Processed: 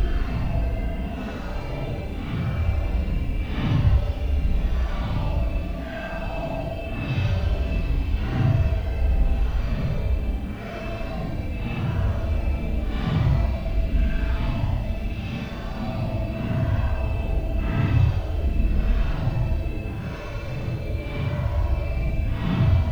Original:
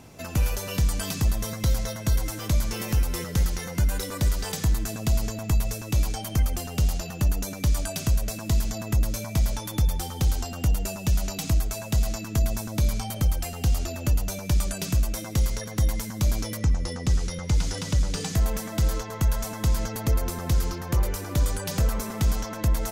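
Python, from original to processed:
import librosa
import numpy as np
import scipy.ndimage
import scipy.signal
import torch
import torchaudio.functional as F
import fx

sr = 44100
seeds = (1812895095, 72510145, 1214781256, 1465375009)

y = scipy.signal.sosfilt(scipy.signal.butter(4, 3100.0, 'lowpass', fs=sr, output='sos'), x)
y = fx.quant_dither(y, sr, seeds[0], bits=10, dither='none')
y = fx.echo_swing(y, sr, ms=984, ratio=3, feedback_pct=59, wet_db=-4.5)
y = fx.paulstretch(y, sr, seeds[1], factor=11.0, window_s=0.05, from_s=7.31)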